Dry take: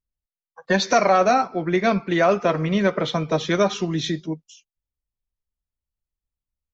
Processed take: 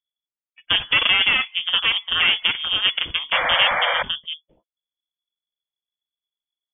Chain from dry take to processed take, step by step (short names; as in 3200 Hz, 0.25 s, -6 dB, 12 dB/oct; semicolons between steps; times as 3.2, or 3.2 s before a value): added harmonics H 4 -9 dB, 7 -26 dB, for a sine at -7 dBFS; inverted band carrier 3400 Hz; painted sound noise, 3.32–4.03, 480–2400 Hz -19 dBFS; gain -2.5 dB